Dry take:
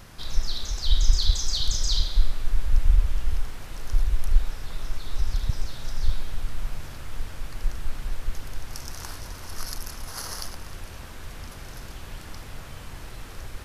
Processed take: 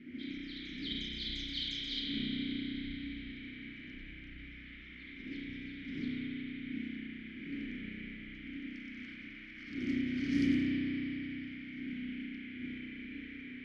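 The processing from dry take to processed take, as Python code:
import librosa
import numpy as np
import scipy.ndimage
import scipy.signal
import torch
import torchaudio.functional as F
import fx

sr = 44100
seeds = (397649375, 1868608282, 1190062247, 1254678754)

y = fx.dmg_wind(x, sr, seeds[0], corner_hz=290.0, level_db=-33.0)
y = fx.graphic_eq(y, sr, hz=(125, 500, 1000, 2000, 4000, 8000), db=(-3, -9, -6, 11, 4, 9))
y = 10.0 ** (-9.5 / 20.0) * np.tanh(y / 10.0 ** (-9.5 / 20.0))
y = fx.vowel_filter(y, sr, vowel='i')
y = fx.env_lowpass(y, sr, base_hz=1700.0, full_db=-28.0)
y = fx.rev_spring(y, sr, rt60_s=3.8, pass_ms=(32,), chirp_ms=60, drr_db=-5.0)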